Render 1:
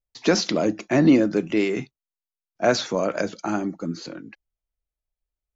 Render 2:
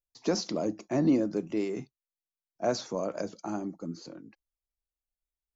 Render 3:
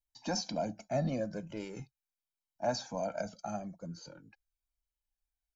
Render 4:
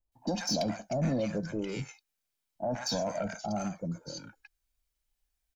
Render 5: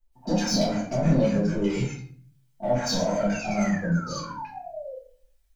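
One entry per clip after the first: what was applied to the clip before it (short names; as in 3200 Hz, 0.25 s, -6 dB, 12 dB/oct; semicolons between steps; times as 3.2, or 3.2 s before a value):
band shelf 2300 Hz -8 dB; gain -8.5 dB
comb 1.3 ms, depth 71%; cascading flanger falling 0.41 Hz
limiter -28 dBFS, peak gain reduction 7 dB; soft clip -30.5 dBFS, distortion -19 dB; bands offset in time lows, highs 0.12 s, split 930 Hz; gain +8.5 dB
in parallel at -6.5 dB: hard clip -34.5 dBFS, distortion -7 dB; on the sum: painted sound fall, 3.32–4.95, 500–2800 Hz -42 dBFS; shoebox room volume 51 m³, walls mixed, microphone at 1.6 m; gain -4 dB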